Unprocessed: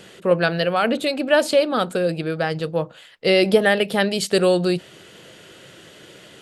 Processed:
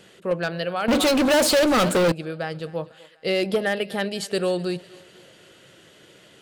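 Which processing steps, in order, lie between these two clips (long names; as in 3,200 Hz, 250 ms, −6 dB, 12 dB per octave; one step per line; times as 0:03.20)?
feedback echo with a high-pass in the loop 247 ms, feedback 58%, high-pass 340 Hz, level −20 dB
hard clipping −8.5 dBFS, distortion −24 dB
0:00.88–0:02.12: leveller curve on the samples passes 5
level −6.5 dB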